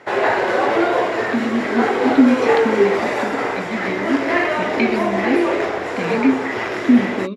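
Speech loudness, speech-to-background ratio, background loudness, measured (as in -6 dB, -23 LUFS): -21.0 LUFS, -1.5 dB, -19.5 LUFS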